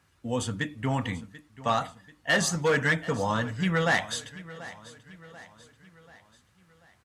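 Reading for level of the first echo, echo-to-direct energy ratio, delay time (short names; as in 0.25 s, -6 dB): -17.5 dB, -16.5 dB, 0.737 s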